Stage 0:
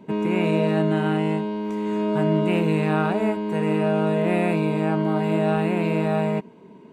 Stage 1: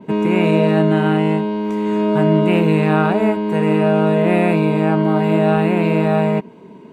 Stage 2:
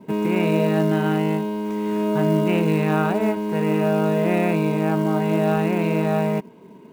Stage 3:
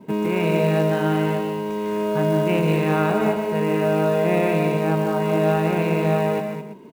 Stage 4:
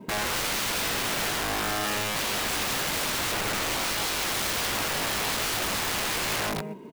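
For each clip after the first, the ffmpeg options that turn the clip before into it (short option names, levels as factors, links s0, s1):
-af "adynamicequalizer=threshold=0.00282:dfrequency=7400:dqfactor=0.86:tfrequency=7400:tqfactor=0.86:attack=5:release=100:ratio=0.375:range=2.5:mode=cutabove:tftype=bell,volume=2.11"
-af "acrusher=bits=7:mode=log:mix=0:aa=0.000001,volume=0.562"
-af "aecho=1:1:151|212|334:0.447|0.376|0.178"
-af "aeval=exprs='(mod(15*val(0)+1,2)-1)/15':c=same"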